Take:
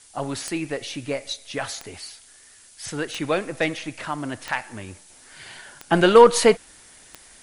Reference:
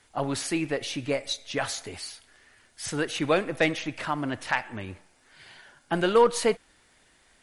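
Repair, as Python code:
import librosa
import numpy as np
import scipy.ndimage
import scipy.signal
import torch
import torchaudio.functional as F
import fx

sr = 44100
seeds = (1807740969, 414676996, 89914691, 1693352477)

y = fx.fix_declick_ar(x, sr, threshold=10.0)
y = fx.noise_reduce(y, sr, print_start_s=2.24, print_end_s=2.74, reduce_db=12.0)
y = fx.gain(y, sr, db=fx.steps((0.0, 0.0), (5.1, -8.0)))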